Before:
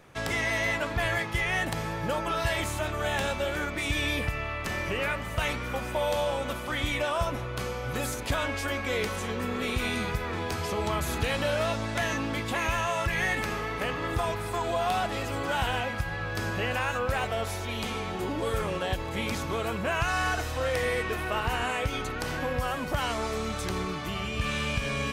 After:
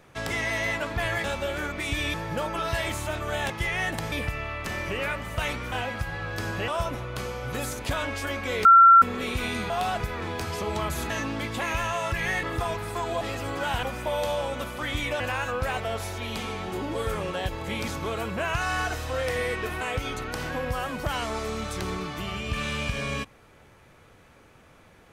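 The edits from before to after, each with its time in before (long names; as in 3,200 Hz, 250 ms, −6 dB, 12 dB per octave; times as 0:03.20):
0:01.24–0:01.86: swap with 0:03.22–0:04.12
0:05.72–0:07.09: swap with 0:15.71–0:16.67
0:09.06–0:09.43: beep over 1,360 Hz −9.5 dBFS
0:11.21–0:12.04: remove
0:13.37–0:14.01: remove
0:14.79–0:15.09: move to 0:10.11
0:21.28–0:21.69: remove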